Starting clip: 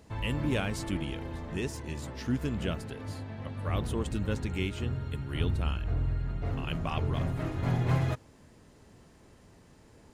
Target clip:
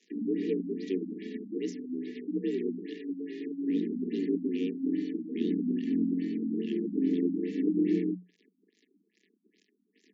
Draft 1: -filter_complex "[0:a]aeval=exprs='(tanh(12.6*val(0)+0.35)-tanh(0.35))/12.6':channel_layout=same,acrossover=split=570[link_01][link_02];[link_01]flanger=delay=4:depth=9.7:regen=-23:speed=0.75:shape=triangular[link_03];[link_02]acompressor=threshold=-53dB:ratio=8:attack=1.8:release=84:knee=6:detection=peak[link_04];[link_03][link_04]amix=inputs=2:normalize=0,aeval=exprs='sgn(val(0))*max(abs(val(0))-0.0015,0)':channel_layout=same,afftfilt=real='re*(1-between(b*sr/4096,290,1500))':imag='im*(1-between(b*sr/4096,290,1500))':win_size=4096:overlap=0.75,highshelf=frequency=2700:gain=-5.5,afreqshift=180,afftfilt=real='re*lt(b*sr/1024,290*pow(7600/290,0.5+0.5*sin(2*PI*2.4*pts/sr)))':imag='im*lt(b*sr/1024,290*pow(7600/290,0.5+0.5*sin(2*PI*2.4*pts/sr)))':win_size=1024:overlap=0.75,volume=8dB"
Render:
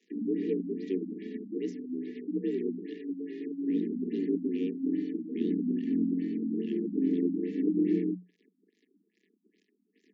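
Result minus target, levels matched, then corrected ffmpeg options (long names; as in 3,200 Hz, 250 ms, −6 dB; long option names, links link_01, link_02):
4,000 Hz band −5.5 dB
-filter_complex "[0:a]aeval=exprs='(tanh(12.6*val(0)+0.35)-tanh(0.35))/12.6':channel_layout=same,acrossover=split=570[link_01][link_02];[link_01]flanger=delay=4:depth=9.7:regen=-23:speed=0.75:shape=triangular[link_03];[link_02]acompressor=threshold=-53dB:ratio=8:attack=1.8:release=84:knee=6:detection=peak[link_04];[link_03][link_04]amix=inputs=2:normalize=0,aeval=exprs='sgn(val(0))*max(abs(val(0))-0.0015,0)':channel_layout=same,afftfilt=real='re*(1-between(b*sr/4096,290,1500))':imag='im*(1-between(b*sr/4096,290,1500))':win_size=4096:overlap=0.75,highshelf=frequency=2700:gain=4.5,afreqshift=180,afftfilt=real='re*lt(b*sr/1024,290*pow(7600/290,0.5+0.5*sin(2*PI*2.4*pts/sr)))':imag='im*lt(b*sr/1024,290*pow(7600/290,0.5+0.5*sin(2*PI*2.4*pts/sr)))':win_size=1024:overlap=0.75,volume=8dB"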